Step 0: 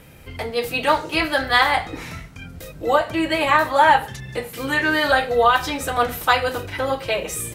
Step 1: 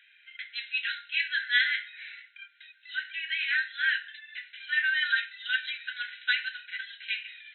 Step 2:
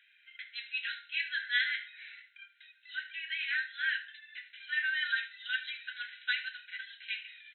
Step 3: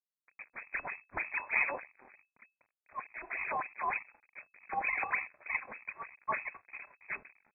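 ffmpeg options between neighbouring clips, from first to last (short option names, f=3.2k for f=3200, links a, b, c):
-af "afftfilt=real='re*between(b*sr/4096,1400,4100)':imag='im*between(b*sr/4096,1400,4100)':win_size=4096:overlap=0.75,volume=-5dB"
-af "aecho=1:1:76:0.158,volume=-5.5dB"
-af "acrusher=samples=24:mix=1:aa=0.000001:lfo=1:lforange=38.4:lforate=3.3,aeval=exprs='sgn(val(0))*max(abs(val(0))-0.00316,0)':c=same,lowpass=f=2.2k:t=q:w=0.5098,lowpass=f=2.2k:t=q:w=0.6013,lowpass=f=2.2k:t=q:w=0.9,lowpass=f=2.2k:t=q:w=2.563,afreqshift=-2600"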